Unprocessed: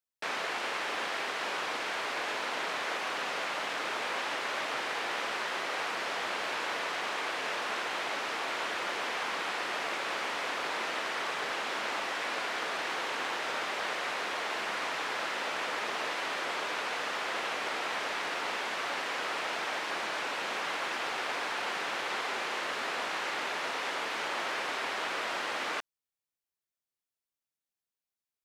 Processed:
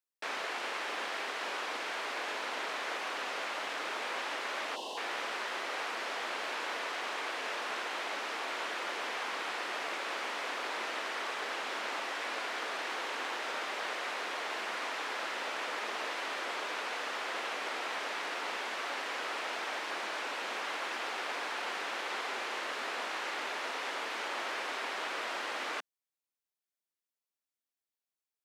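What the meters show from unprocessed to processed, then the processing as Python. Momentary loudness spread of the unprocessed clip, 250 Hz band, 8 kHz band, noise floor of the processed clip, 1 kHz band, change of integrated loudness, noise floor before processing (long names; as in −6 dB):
0 LU, −3.5 dB, −3.0 dB, below −85 dBFS, −3.0 dB, −3.0 dB, below −85 dBFS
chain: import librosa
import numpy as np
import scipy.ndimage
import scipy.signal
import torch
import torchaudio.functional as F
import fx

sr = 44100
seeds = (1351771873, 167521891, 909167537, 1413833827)

y = scipy.signal.sosfilt(scipy.signal.butter(4, 220.0, 'highpass', fs=sr, output='sos'), x)
y = fx.spec_box(y, sr, start_s=4.75, length_s=0.23, low_hz=1100.0, high_hz=2600.0, gain_db=-26)
y = F.gain(torch.from_numpy(y), -3.0).numpy()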